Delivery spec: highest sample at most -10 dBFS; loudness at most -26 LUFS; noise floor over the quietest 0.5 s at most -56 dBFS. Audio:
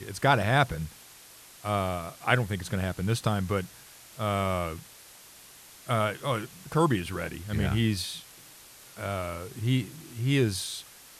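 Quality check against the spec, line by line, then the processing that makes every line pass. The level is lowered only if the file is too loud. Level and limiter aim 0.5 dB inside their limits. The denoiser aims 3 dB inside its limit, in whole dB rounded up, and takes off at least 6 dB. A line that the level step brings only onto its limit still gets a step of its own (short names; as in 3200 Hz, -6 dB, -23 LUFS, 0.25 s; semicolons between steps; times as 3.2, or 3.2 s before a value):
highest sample -7.5 dBFS: fail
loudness -29.0 LUFS: OK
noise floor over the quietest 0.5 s -51 dBFS: fail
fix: denoiser 8 dB, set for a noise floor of -51 dBFS; limiter -10.5 dBFS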